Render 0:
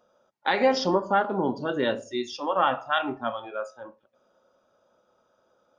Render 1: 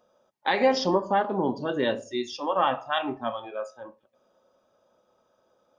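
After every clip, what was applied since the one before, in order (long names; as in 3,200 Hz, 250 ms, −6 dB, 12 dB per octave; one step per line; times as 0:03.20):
notch filter 1,400 Hz, Q 7.7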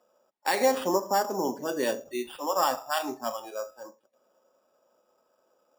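three-way crossover with the lows and the highs turned down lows −15 dB, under 220 Hz, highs −15 dB, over 4,100 Hz
decimation without filtering 7×
level −1.5 dB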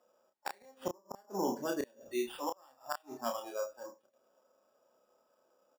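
gate with flip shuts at −18 dBFS, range −33 dB
double-tracking delay 30 ms −5 dB
level −4.5 dB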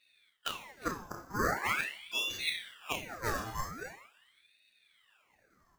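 coupled-rooms reverb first 0.59 s, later 2.2 s, from −21 dB, DRR 2 dB
ring modulator whose carrier an LFO sweeps 1,800 Hz, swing 75%, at 0.43 Hz
level +4 dB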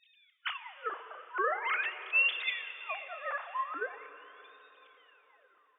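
three sine waves on the formant tracks
dense smooth reverb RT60 4.1 s, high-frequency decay 0.95×, DRR 10.5 dB
level +1.5 dB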